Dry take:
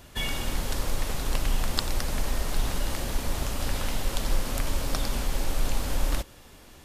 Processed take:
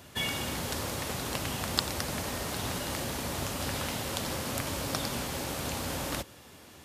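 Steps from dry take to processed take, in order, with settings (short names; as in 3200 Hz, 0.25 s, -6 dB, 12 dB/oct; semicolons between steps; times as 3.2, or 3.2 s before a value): HPF 79 Hz 24 dB/oct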